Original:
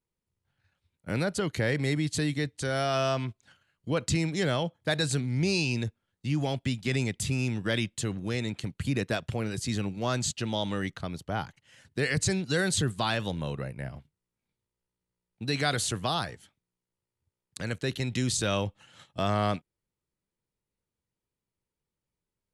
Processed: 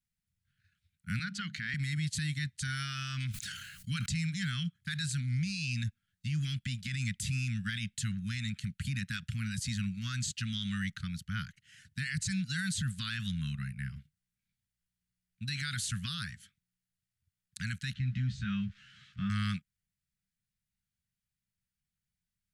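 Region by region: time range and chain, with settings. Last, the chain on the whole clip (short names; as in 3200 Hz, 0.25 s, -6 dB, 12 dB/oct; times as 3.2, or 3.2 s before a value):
1.19–1.74 three-band isolator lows -15 dB, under 190 Hz, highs -19 dB, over 6100 Hz + notches 50/100/150/200/250 Hz
3.2–4.06 high shelf 3600 Hz +11 dB + sustainer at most 38 dB/s
17.94–19.3 switching spikes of -31.5 dBFS + tape spacing loss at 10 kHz 44 dB + doubler 15 ms -4 dB
whole clip: elliptic band-stop 200–1500 Hz, stop band 40 dB; limiter -26 dBFS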